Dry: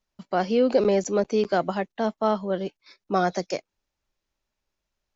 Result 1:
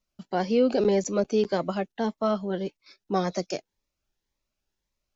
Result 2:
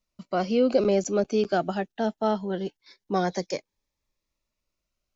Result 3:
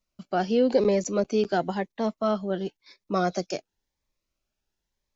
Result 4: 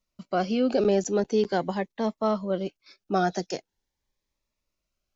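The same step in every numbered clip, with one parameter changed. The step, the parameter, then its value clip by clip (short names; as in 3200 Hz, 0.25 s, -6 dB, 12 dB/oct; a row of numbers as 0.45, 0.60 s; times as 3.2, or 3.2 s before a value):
cascading phaser, rate: 1.8, 0.22, 0.95, 0.43 Hz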